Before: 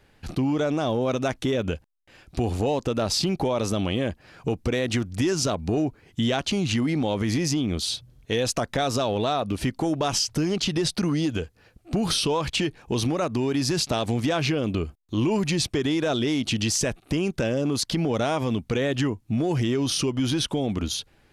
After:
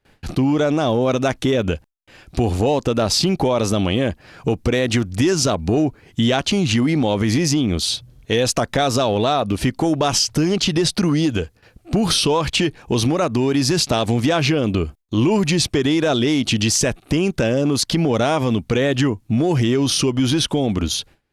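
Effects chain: gate with hold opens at -47 dBFS; trim +6.5 dB

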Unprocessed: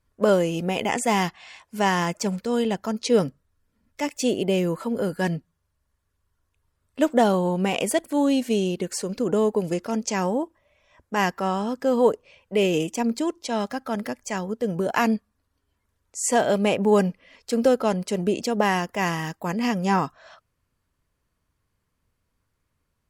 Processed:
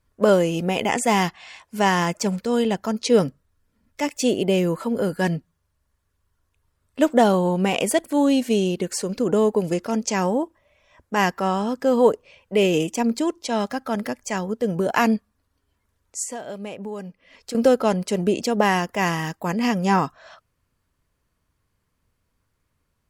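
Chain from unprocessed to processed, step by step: 16.23–17.55 s: compression 4:1, threshold -36 dBFS, peak gain reduction 18 dB; trim +2.5 dB

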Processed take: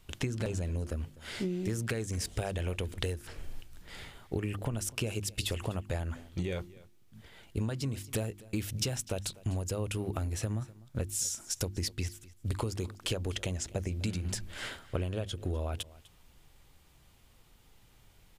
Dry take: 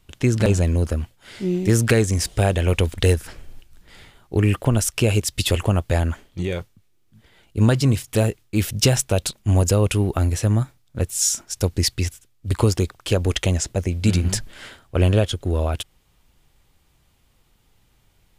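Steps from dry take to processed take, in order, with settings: hum notches 50/100/150/200/250/300/350 Hz; compression 16:1, threshold -30 dBFS, peak gain reduction 19 dB; on a send: delay 250 ms -20.5 dB

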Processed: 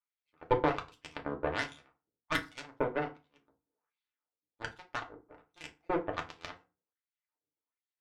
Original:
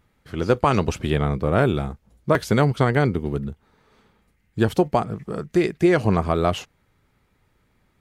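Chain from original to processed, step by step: random holes in the spectrogram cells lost 27%; hum notches 60/120/180/240/300 Hz; half-wave rectifier; wah-wah 1.3 Hz 380–3500 Hz, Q 2.3; Chebyshev shaper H 2 -6 dB, 7 -18 dB, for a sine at -15 dBFS; FDN reverb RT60 0.3 s, low-frequency decay 1.2×, high-frequency decay 0.7×, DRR 1.5 dB; trim -2.5 dB

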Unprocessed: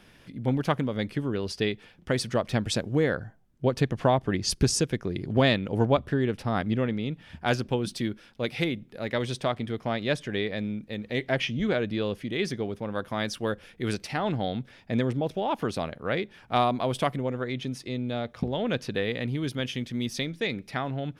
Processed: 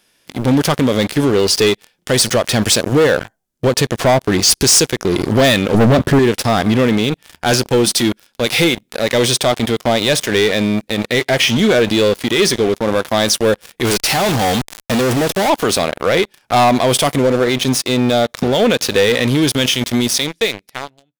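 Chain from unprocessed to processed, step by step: fade out at the end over 1.56 s; tone controls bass -11 dB, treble +13 dB; harmonic-percussive split harmonic +8 dB; 5.74–6.19 s: peaking EQ 170 Hz +14.5 dB 2.6 oct; waveshaping leveller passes 5; peak limiter -7 dBFS, peak gain reduction 7.5 dB; 13.85–15.50 s: fuzz box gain 42 dB, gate -43 dBFS

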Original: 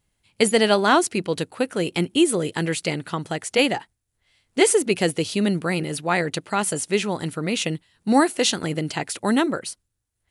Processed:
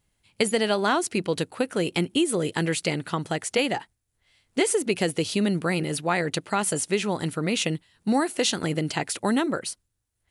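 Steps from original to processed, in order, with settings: compression 5:1, threshold -19 dBFS, peak gain reduction 8 dB

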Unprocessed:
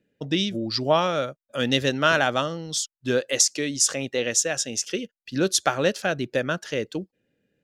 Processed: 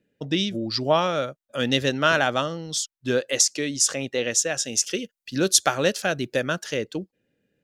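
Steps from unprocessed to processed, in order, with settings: 4.63–6.77 s: treble shelf 5.1 kHz +8 dB

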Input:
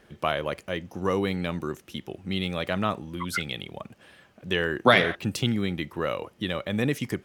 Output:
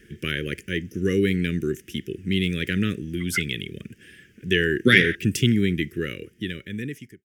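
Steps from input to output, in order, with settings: fade out at the end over 1.48 s; elliptic band-stop 410–1700 Hz, stop band 80 dB; peaking EQ 4.1 kHz -14.5 dB 0.26 oct; trim +7 dB

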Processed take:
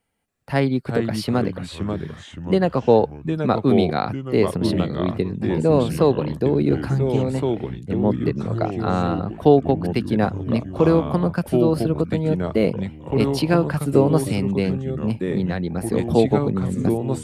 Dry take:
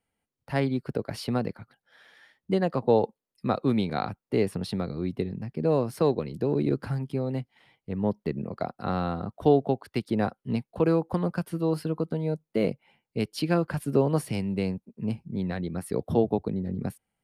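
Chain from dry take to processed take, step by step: ever faster or slower copies 280 ms, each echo -3 st, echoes 3, each echo -6 dB; trim +6.5 dB

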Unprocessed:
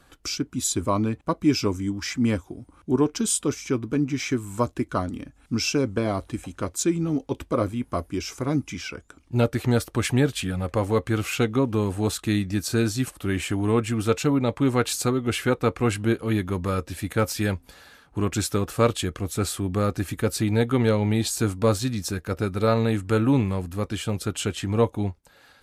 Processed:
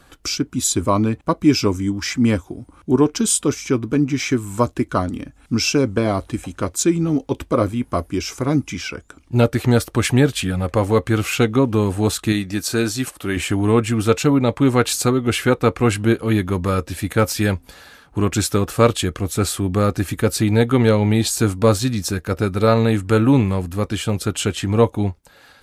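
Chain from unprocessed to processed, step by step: 12.32–13.37 s: bass shelf 190 Hz -9.5 dB; trim +6 dB

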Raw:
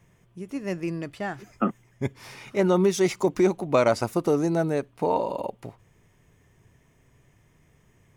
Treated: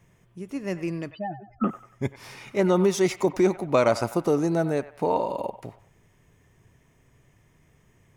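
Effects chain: 1.11–1.64 s: spectral contrast enhancement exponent 3.9; on a send: feedback echo behind a band-pass 94 ms, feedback 36%, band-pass 1.3 kHz, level -12 dB

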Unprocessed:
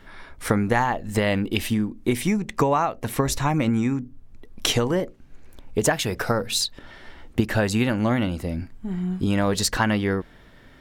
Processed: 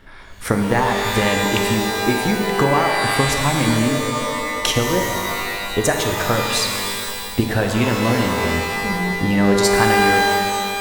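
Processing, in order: transient shaper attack +1 dB, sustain -5 dB; pitch-shifted reverb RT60 2.2 s, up +12 st, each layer -2 dB, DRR 3.5 dB; trim +1.5 dB

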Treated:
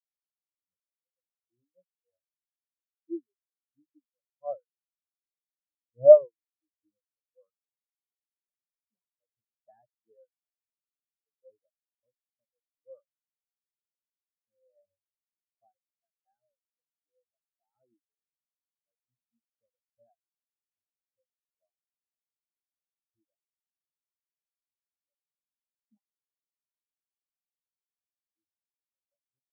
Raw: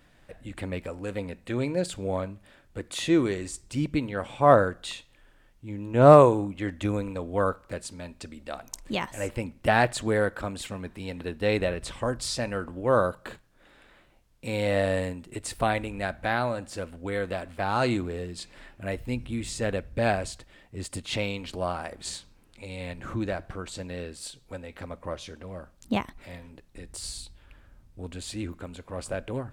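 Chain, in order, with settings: hum notches 50/100/150/200/250 Hz; reverb removal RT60 1.5 s; spectral contrast expander 4:1

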